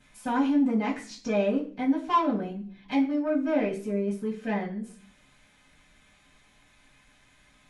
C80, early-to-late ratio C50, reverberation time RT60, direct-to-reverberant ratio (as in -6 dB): 14.5 dB, 10.5 dB, 0.45 s, -13.5 dB